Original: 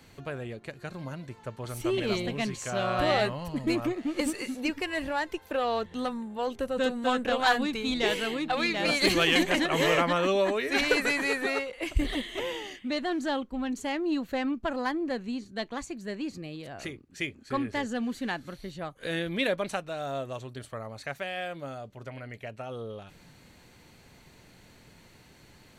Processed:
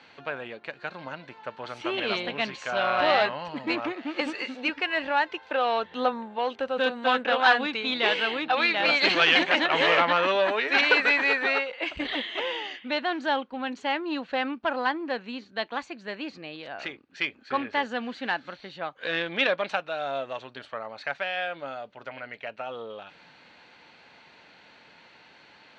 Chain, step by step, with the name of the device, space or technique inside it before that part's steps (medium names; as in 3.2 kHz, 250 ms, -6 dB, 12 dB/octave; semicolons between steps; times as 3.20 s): guitar amplifier (valve stage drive 18 dB, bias 0.55; tone controls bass -14 dB, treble +7 dB; cabinet simulation 87–3900 Hz, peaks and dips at 110 Hz -6 dB, 380 Hz -5 dB, 870 Hz +4 dB, 1.5 kHz +5 dB, 2.6 kHz +3 dB); 5.85–6.39 s: dynamic bell 460 Hz, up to +6 dB, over -47 dBFS, Q 0.7; trim +6 dB